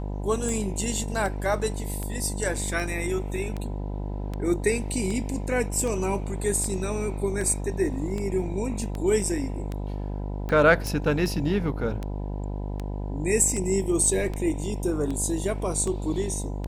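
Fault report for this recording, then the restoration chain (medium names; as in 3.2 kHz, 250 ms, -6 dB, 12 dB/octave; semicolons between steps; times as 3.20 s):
buzz 50 Hz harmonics 20 -31 dBFS
tick 78 rpm
10.87 s: pop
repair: de-click; de-hum 50 Hz, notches 20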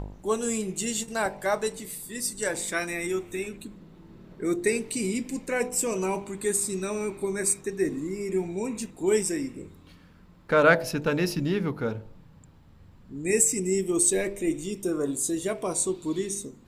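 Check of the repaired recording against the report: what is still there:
nothing left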